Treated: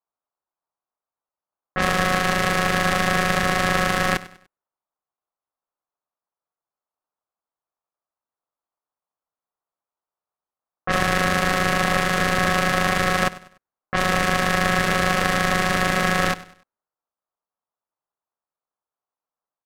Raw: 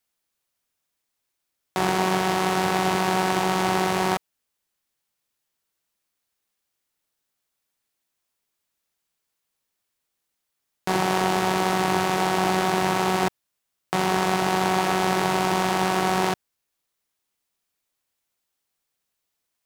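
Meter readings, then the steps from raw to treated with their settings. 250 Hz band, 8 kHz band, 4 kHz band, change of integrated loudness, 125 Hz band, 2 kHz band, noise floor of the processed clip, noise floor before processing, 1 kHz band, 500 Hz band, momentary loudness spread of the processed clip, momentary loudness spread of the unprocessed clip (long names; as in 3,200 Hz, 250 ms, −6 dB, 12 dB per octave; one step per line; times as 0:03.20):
0.0 dB, +2.0 dB, +3.0 dB, +2.5 dB, +4.0 dB, +7.5 dB, below −85 dBFS, −80 dBFS, 0.0 dB, 0.0 dB, 5 LU, 5 LU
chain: low-pass that shuts in the quiet parts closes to 360 Hz, open at −20 dBFS
ring modulation 920 Hz
repeating echo 98 ms, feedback 36%, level −18 dB
level +5 dB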